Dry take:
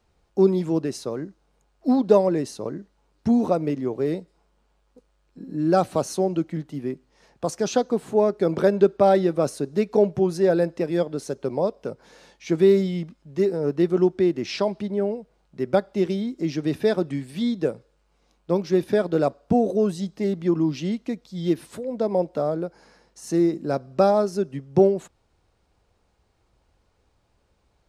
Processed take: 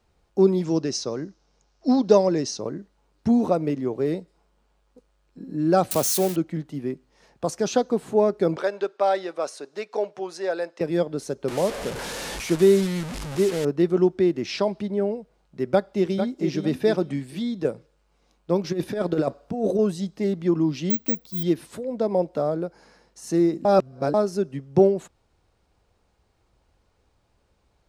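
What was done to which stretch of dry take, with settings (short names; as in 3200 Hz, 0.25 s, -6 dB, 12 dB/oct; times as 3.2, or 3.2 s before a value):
0.64–2.61 synth low-pass 5700 Hz, resonance Q 4.1
5.91–6.36 switching spikes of -19 dBFS
8.56–10.81 BPF 680–7700 Hz
11.48–13.65 delta modulation 64 kbps, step -26.5 dBFS
15.65–16.51 echo throw 0.45 s, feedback 20%, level -8 dB
17.22–17.65 compressor 2:1, threshold -26 dBFS
18.64–19.79 negative-ratio compressor -22 dBFS, ratio -0.5
20.9–21.43 careless resampling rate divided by 2×, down none, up zero stuff
23.65–24.14 reverse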